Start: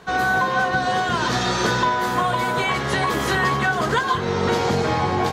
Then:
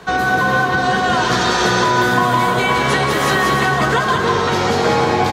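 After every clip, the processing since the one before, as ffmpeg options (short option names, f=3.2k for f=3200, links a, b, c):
-filter_complex "[0:a]acrossover=split=150|400[a][b][c];[a]acompressor=threshold=-38dB:ratio=4[d];[b]acompressor=threshold=-31dB:ratio=4[e];[c]acompressor=threshold=-23dB:ratio=4[f];[d][e][f]amix=inputs=3:normalize=0,aecho=1:1:190|304|372.4|413.4|438.1:0.631|0.398|0.251|0.158|0.1,volume=7dB"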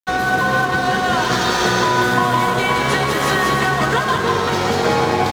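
-af "aeval=exprs='sgn(val(0))*max(abs(val(0))-0.0335,0)':c=same"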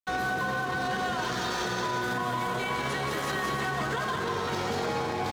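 -af "alimiter=limit=-13.5dB:level=0:latency=1:release=45,volume=-7.5dB"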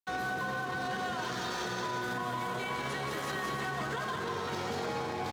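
-af "highpass=68,volume=-5dB"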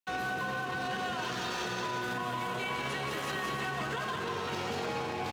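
-af "equalizer=f=2.7k:t=o:w=0.33:g=7.5"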